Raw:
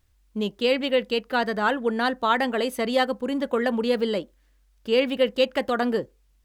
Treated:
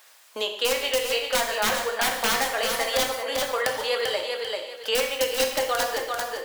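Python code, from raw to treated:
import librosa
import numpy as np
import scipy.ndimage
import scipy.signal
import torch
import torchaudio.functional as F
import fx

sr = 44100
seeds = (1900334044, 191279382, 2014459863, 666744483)

y = scipy.signal.sosfilt(scipy.signal.butter(4, 590.0, 'highpass', fs=sr, output='sos'), x)
y = (np.mod(10.0 ** (16.0 / 20.0) * y + 1.0, 2.0) - 1.0) / 10.0 ** (16.0 / 20.0)
y = fx.echo_feedback(y, sr, ms=392, feedback_pct=17, wet_db=-7.5)
y = fx.rev_gated(y, sr, seeds[0], gate_ms=220, shape='falling', drr_db=2.0)
y = fx.band_squash(y, sr, depth_pct=70)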